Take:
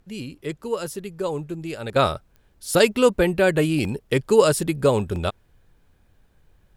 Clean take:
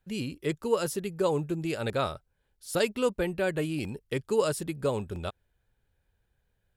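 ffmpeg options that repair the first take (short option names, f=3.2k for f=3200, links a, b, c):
-af "adeclick=t=4,agate=range=-21dB:threshold=-51dB,asetnsamples=n=441:p=0,asendcmd='1.96 volume volume -10dB',volume=0dB"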